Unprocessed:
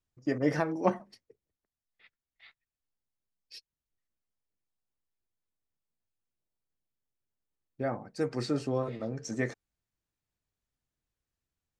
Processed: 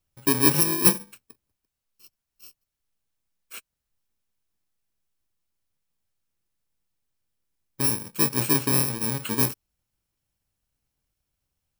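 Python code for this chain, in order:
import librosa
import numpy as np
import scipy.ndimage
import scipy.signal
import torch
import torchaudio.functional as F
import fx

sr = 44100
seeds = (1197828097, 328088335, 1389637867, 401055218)

y = fx.bit_reversed(x, sr, seeds[0], block=64)
y = y * 10.0 ** (8.5 / 20.0)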